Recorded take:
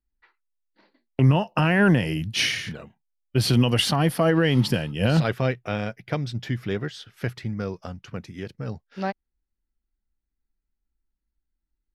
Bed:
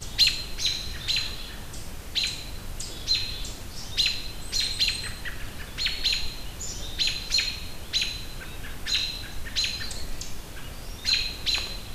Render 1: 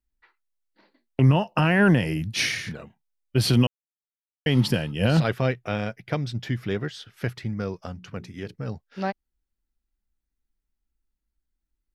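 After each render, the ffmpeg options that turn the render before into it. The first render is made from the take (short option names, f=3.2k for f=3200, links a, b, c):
-filter_complex "[0:a]asettb=1/sr,asplit=3[a][b][c];[a]atrim=end=2.044[d];[b]atrim=start=2.04:end=2.79,asetpts=PTS-STARTPTS,afade=t=in:d=0.004:c=qsin,afade=t=out:st=0.746:d=0.004:c=qsin,equalizer=f=3k:t=o:w=0.21:g=-7.5[e];[c]atrim=start=2.786[f];[d][e]acrossfade=d=0.004:c1=hsin:c2=qsin[g];[g][f]acrossfade=d=0.004:c1=qsin:c2=hsin,asplit=3[h][i][j];[h]afade=t=out:st=7.95:d=0.02[k];[i]bandreject=f=60:t=h:w=6,bandreject=f=120:t=h:w=6,bandreject=f=180:t=h:w=6,bandreject=f=240:t=h:w=6,bandreject=f=300:t=h:w=6,bandreject=f=360:t=h:w=6,bandreject=f=420:t=h:w=6,afade=t=in:st=7.95:d=0.02,afade=t=out:st=8.53:d=0.02[l];[j]afade=t=in:st=8.53:d=0.02[m];[k][l][m]amix=inputs=3:normalize=0,asplit=3[n][o][p];[n]atrim=end=3.67,asetpts=PTS-STARTPTS,afade=t=out:st=3.666:d=0.004:c=hsin[q];[o]atrim=start=3.67:end=4.46,asetpts=PTS-STARTPTS,volume=0[r];[p]atrim=start=4.46,asetpts=PTS-STARTPTS,afade=t=in:d=0.004:c=hsin[s];[q][r][s]concat=n=3:v=0:a=1"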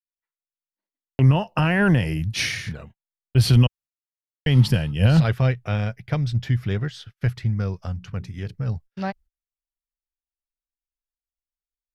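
-af "agate=range=-35dB:threshold=-46dB:ratio=16:detection=peak,asubboost=boost=5.5:cutoff=120"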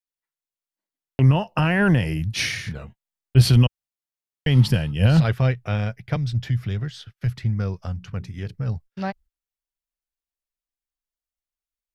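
-filter_complex "[0:a]asettb=1/sr,asplit=3[a][b][c];[a]atrim=end=2.744[d];[b]atrim=start=2.74:end=3.49,asetpts=PTS-STARTPTS,afade=t=in:d=0.004:c=qsin,afade=t=out:st=0.746:d=0.004:c=qsin,asplit=2[e][f];[f]adelay=15,volume=-3.5dB[g];[e][g]amix=inputs=2:normalize=0,atrim=end_sample=33075[h];[c]atrim=start=3.486[i];[d][h]acrossfade=d=0.004:c1=hsin:c2=qsin[j];[j][i]acrossfade=d=0.004:c1=qsin:c2=hsin,asettb=1/sr,asplit=3[k][l][m];[k]atrim=end=6.164[n];[l]atrim=start=6.16:end=7.38,asetpts=PTS-STARTPTS,afade=t=in:d=0.004:c=qsin,afade=t=out:st=1.216:d=0.004:c=qsin,acrossover=split=170|3000[o][p][q];[p]acompressor=threshold=-33dB:ratio=6:attack=3.2:release=140:knee=2.83:detection=peak[r];[o][r][q]amix=inputs=3:normalize=0[s];[m]atrim=start=7.376[t];[n][s]acrossfade=d=0.004:c1=hsin:c2=qsin[u];[u][t]acrossfade=d=0.004:c1=qsin:c2=hsin"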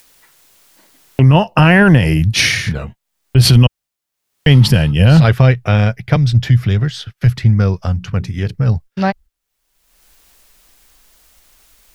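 -af "acompressor=mode=upward:threshold=-38dB:ratio=2.5,alimiter=level_in=12dB:limit=-1dB:release=50:level=0:latency=1"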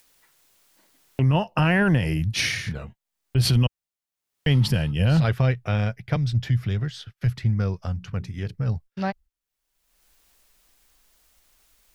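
-af "volume=-11dB"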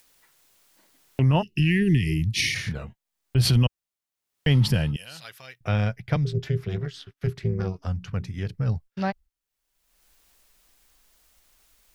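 -filter_complex "[0:a]asplit=3[a][b][c];[a]afade=t=out:st=1.41:d=0.02[d];[b]asuperstop=centerf=870:order=20:qfactor=0.61,afade=t=in:st=1.41:d=0.02,afade=t=out:st=2.54:d=0.02[e];[c]afade=t=in:st=2.54:d=0.02[f];[d][e][f]amix=inputs=3:normalize=0,asettb=1/sr,asplit=3[g][h][i];[g]atrim=end=4.964[j];[h]atrim=start=4.96:end=5.61,asetpts=PTS-STARTPTS,afade=t=in:d=0.004:c=qsin,afade=t=out:st=0.646:d=0.004:c=qsin,aderivative[k];[i]atrim=start=5.606[l];[j][k]acrossfade=d=0.004:c1=hsin:c2=qsin[m];[m][l]acrossfade=d=0.004:c1=qsin:c2=hsin,asettb=1/sr,asplit=3[n][o][p];[n]atrim=end=6.254[q];[o]atrim=start=6.25:end=7.86,asetpts=PTS-STARTPTS,afade=t=in:d=0.004:c=qsin,afade=t=out:st=1.606:d=0.004:c=qsin,tremolo=f=280:d=0.889[r];[p]atrim=start=7.856[s];[q][r]acrossfade=d=0.004:c1=hsin:c2=qsin[t];[t][s]acrossfade=d=0.004:c1=qsin:c2=hsin"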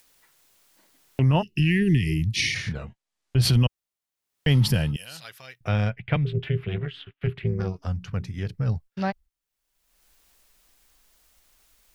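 -filter_complex "[0:a]asettb=1/sr,asplit=3[a][b][c];[a]atrim=end=2.364[d];[b]atrim=start=2.36:end=3.42,asetpts=PTS-STARTPTS,afade=t=in:d=0.004:c=qsin,afade=t=out:st=1.056:d=0.004:c=qsin,lowpass=8.1k[e];[c]atrim=start=3.416[f];[d][e]acrossfade=d=0.004:c1=hsin:c2=qsin[g];[g][f]acrossfade=d=0.004:c1=qsin:c2=hsin,asettb=1/sr,asplit=3[h][i][j];[h]atrim=end=4.484[k];[i]atrim=start=4.48:end=5.17,asetpts=PTS-STARTPTS,afade=t=in:d=0.004:c=qsin,afade=t=out:st=0.686:d=0.004:c=qsin,highshelf=f=9.1k:g=8[l];[j]atrim=start=5.166[m];[k][l]acrossfade=d=0.004:c1=hsin:c2=qsin[n];[n][m]acrossfade=d=0.004:c1=qsin:c2=hsin,asettb=1/sr,asplit=3[o][p][q];[o]atrim=end=5.904[r];[p]atrim=start=5.9:end=7.47,asetpts=PTS-STARTPTS,afade=t=in:d=0.004:c=qsin,afade=t=out:st=1.566:d=0.004:c=qsin,highshelf=f=4.1k:t=q:w=3:g=-13[s];[q]atrim=start=7.466[t];[r][s]acrossfade=d=0.004:c1=hsin:c2=qsin[u];[u][t]acrossfade=d=0.004:c1=qsin:c2=hsin"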